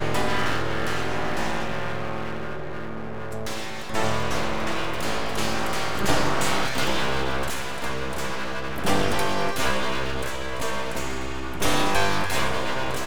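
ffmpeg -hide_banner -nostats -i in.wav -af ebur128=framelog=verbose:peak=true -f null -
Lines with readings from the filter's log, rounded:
Integrated loudness:
  I:         -26.7 LUFS
  Threshold: -36.7 LUFS
Loudness range:
  LRA:         4.3 LU
  Threshold: -46.9 LUFS
  LRA low:   -29.8 LUFS
  LRA high:  -25.5 LUFS
True peak:
  Peak:       -5.4 dBFS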